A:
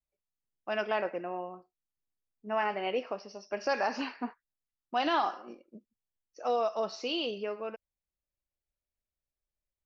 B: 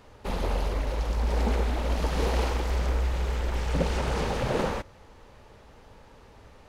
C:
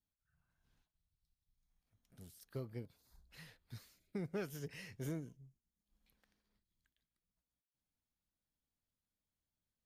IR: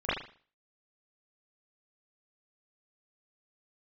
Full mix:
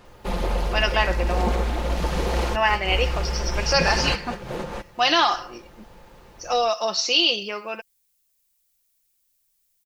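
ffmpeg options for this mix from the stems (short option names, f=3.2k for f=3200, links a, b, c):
-filter_complex "[0:a]crystalizer=i=10:c=0,adelay=50,volume=3dB[a];[1:a]volume=3dB[b];[2:a]flanger=delay=4.6:depth=6:regen=-44:speed=0.7:shape=triangular,volume=-2.5dB,asplit=2[c][d];[d]apad=whole_len=294940[e];[b][e]sidechaincompress=threshold=-58dB:ratio=8:attack=27:release=158[f];[a][f][c]amix=inputs=3:normalize=0,aecho=1:1:5.7:0.44"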